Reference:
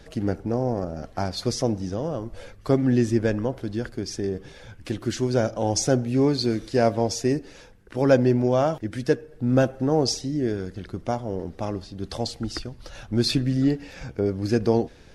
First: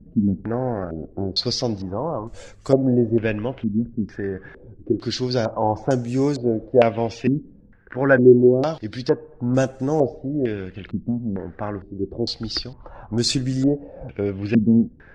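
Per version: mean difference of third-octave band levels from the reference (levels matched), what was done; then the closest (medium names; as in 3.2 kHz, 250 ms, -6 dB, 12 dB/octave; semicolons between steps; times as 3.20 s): 6.5 dB: step-sequenced low-pass 2.2 Hz 220–7400 Hz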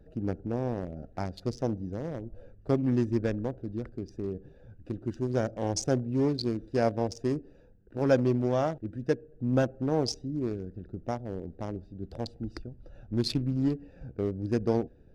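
4.5 dB: local Wiener filter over 41 samples; trim -5.5 dB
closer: second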